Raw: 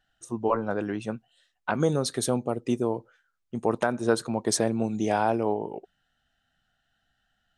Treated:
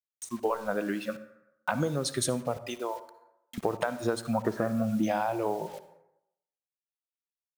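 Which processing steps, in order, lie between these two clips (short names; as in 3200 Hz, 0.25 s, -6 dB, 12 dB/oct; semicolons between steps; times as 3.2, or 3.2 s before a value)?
spectral noise reduction 28 dB; 2.57–3.58 HPF 690 Hz 12 dB/oct; compressor 16:1, threshold -27 dBFS, peak gain reduction 11 dB; 4.33–5.03 synth low-pass 1300 Hz, resonance Q 4.9; bit-crush 9-bit; reverb RT60 0.80 s, pre-delay 47 ms, DRR 13.5 dB; mismatched tape noise reduction encoder only; gain +3 dB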